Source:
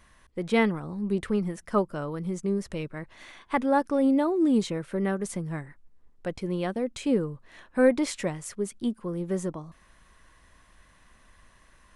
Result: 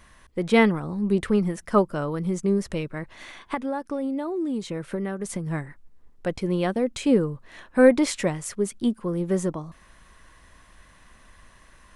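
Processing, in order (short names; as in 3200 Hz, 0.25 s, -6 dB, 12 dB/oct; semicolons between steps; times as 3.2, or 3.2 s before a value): 2.78–5.47 compressor 12:1, threshold -30 dBFS, peak gain reduction 13 dB; gain +5 dB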